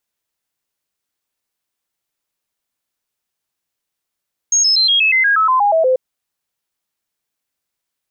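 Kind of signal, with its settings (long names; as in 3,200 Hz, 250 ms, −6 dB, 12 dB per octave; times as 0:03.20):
stepped sweep 6,540 Hz down, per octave 3, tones 12, 0.12 s, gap 0.00 s −10 dBFS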